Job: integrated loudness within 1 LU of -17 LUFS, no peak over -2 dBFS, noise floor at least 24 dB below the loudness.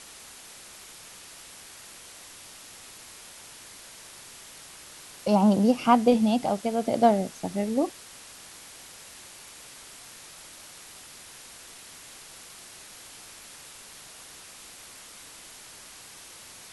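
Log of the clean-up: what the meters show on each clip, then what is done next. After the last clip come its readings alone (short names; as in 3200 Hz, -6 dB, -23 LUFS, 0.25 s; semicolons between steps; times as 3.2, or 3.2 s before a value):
noise floor -47 dBFS; noise floor target -48 dBFS; loudness -23.5 LUFS; peak -6.5 dBFS; loudness target -17.0 LUFS
-> denoiser 6 dB, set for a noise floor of -47 dBFS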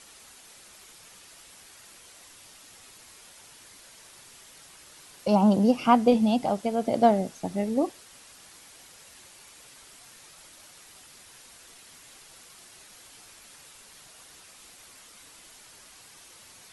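noise floor -52 dBFS; loudness -24.0 LUFS; peak -6.5 dBFS; loudness target -17.0 LUFS
-> gain +7 dB; limiter -2 dBFS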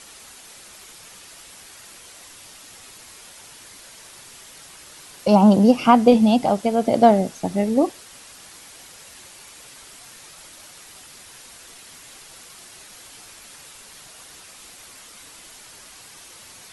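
loudness -17.0 LUFS; peak -2.0 dBFS; noise floor -45 dBFS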